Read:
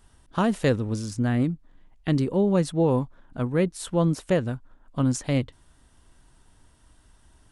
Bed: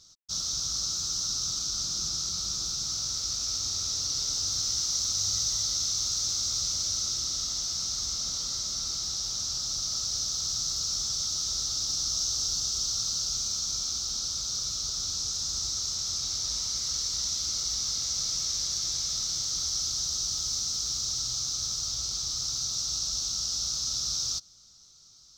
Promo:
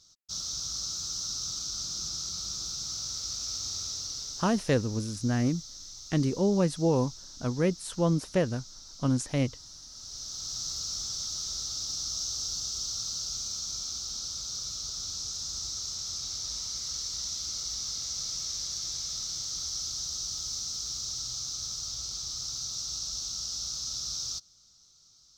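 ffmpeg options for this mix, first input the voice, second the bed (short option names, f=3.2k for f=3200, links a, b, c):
-filter_complex "[0:a]adelay=4050,volume=-3.5dB[a];[1:a]volume=8dB,afade=t=out:st=3.77:d=0.95:silence=0.237137,afade=t=in:st=9.93:d=0.72:silence=0.251189[b];[a][b]amix=inputs=2:normalize=0"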